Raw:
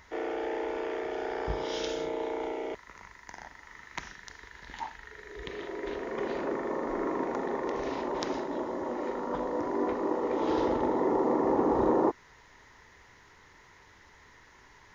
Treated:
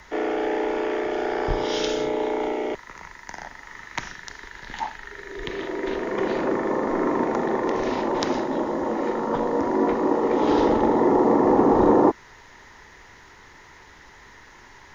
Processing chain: frequency shift -20 Hz; trim +8.5 dB

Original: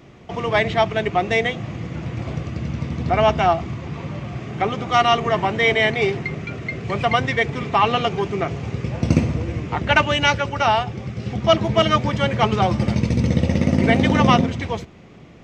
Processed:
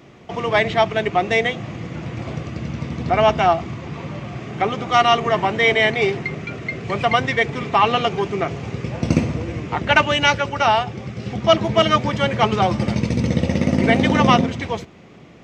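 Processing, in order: bass shelf 90 Hz -9.5 dB; trim +1.5 dB

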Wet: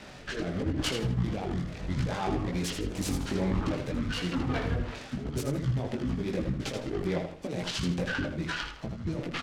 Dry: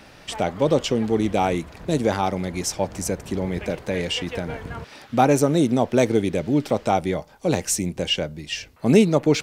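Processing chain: pitch shift switched off and on -11 st, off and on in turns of 206 ms; low-pass 4.8 kHz 12 dB/octave; treble shelf 3.8 kHz +6.5 dB; compressor with a negative ratio -24 dBFS, ratio -0.5; peak limiter -19.5 dBFS, peak gain reduction 12 dB; rotary cabinet horn 0.8 Hz, later 6 Hz, at 4.32 s; chorus voices 4, 0.82 Hz, delay 19 ms, depth 4 ms; on a send: feedback delay 80 ms, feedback 31%, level -6.5 dB; on the sum: delay time shaken by noise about 1.3 kHz, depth 0.037 ms; trim +2.5 dB

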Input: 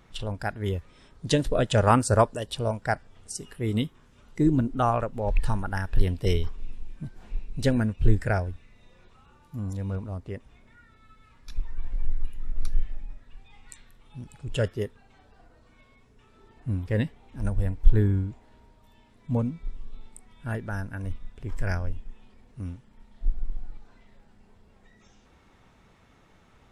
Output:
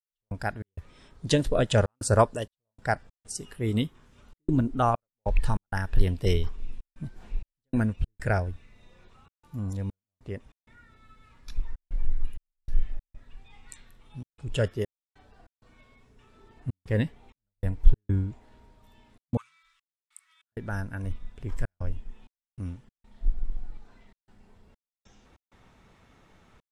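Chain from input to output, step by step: 19.37–20.52 s: elliptic high-pass 1.2 kHz, stop band 50 dB; trance gate "..xx.xxxxxxx.xxx" 97 bpm -60 dB

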